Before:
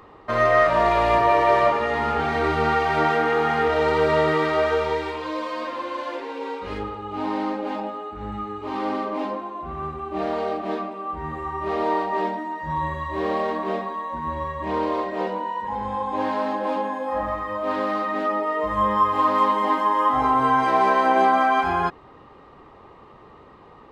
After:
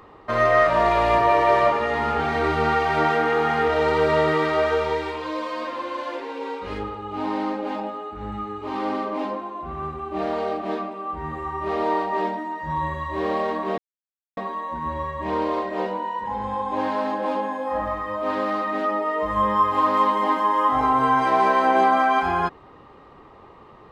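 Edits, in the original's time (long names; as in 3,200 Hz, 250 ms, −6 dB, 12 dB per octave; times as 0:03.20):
0:13.78: splice in silence 0.59 s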